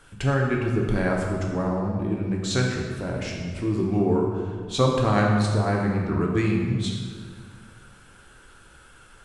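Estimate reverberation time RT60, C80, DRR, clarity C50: 1.9 s, 3.5 dB, -1.5 dB, 2.0 dB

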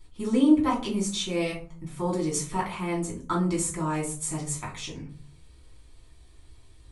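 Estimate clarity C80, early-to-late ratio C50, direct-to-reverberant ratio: 15.0 dB, 9.5 dB, -4.5 dB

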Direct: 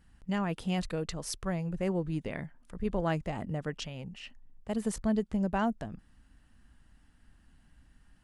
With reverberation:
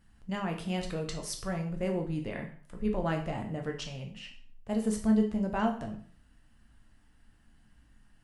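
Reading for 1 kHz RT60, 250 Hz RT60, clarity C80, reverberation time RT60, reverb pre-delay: 0.50 s, 0.45 s, 12.5 dB, 0.50 s, 6 ms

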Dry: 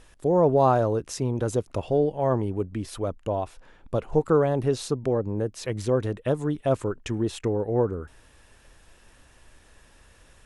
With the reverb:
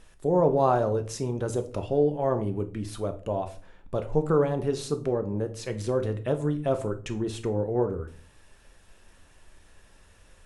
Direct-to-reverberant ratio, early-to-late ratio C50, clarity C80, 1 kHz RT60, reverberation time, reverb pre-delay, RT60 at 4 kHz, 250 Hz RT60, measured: 7.0 dB, 14.5 dB, 20.0 dB, 0.35 s, 0.40 s, 5 ms, 0.30 s, 0.60 s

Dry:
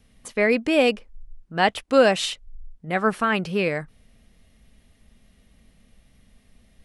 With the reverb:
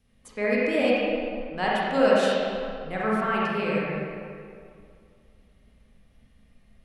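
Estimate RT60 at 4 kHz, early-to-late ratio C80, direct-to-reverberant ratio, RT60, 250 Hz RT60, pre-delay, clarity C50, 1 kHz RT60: 1.5 s, -1.5 dB, -6.5 dB, 2.3 s, 2.3 s, 34 ms, -4.5 dB, 2.3 s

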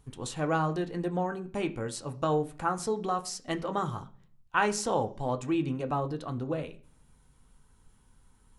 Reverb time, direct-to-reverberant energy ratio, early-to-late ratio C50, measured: 0.45 s, 5.5 dB, 16.5 dB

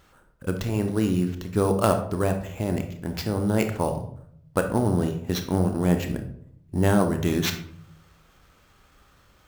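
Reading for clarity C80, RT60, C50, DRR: 12.5 dB, 0.65 s, 8.5 dB, 6.0 dB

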